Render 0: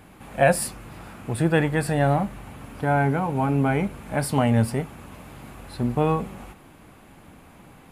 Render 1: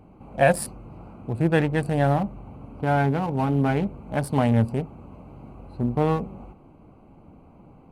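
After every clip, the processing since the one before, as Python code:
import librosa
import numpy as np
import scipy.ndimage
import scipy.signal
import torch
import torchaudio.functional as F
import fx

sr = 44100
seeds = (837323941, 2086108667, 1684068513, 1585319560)

y = fx.wiener(x, sr, points=25)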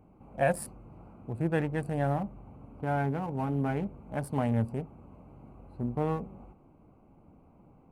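y = fx.peak_eq(x, sr, hz=4000.0, db=-7.0, octaves=1.1)
y = F.gain(torch.from_numpy(y), -8.0).numpy()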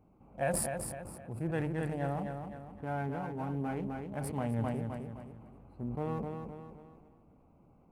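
y = fx.echo_feedback(x, sr, ms=258, feedback_pct=39, wet_db=-6.5)
y = fx.sustainer(y, sr, db_per_s=27.0)
y = F.gain(torch.from_numpy(y), -6.5).numpy()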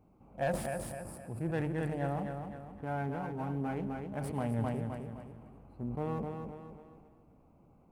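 y = fx.rev_freeverb(x, sr, rt60_s=1.8, hf_ratio=1.0, predelay_ms=60, drr_db=16.5)
y = fx.slew_limit(y, sr, full_power_hz=46.0)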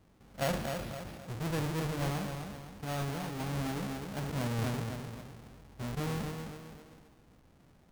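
y = fx.halfwave_hold(x, sr)
y = np.repeat(y[::6], 6)[:len(y)]
y = F.gain(torch.from_numpy(y), -4.0).numpy()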